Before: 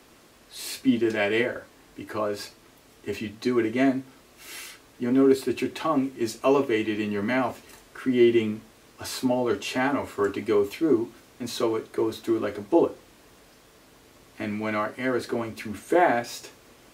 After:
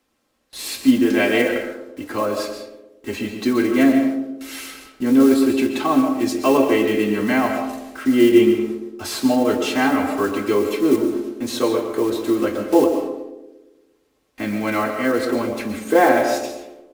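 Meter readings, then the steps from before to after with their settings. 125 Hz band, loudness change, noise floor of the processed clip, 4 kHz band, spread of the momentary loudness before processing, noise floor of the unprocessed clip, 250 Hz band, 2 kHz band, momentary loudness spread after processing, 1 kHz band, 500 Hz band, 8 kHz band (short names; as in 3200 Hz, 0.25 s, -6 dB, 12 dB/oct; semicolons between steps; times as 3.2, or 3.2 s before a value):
+3.5 dB, +6.5 dB, -64 dBFS, +6.5 dB, 17 LU, -55 dBFS, +8.0 dB, +6.5 dB, 15 LU, +6.5 dB, +6.0 dB, +7.5 dB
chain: block floating point 5-bit; gate with hold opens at -40 dBFS; comb 3.8 ms, depth 36%; narrowing echo 0.115 s, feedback 60%, band-pass 370 Hz, level -6.5 dB; digital reverb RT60 0.64 s, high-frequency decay 0.7×, pre-delay 95 ms, DRR 7 dB; gain +5 dB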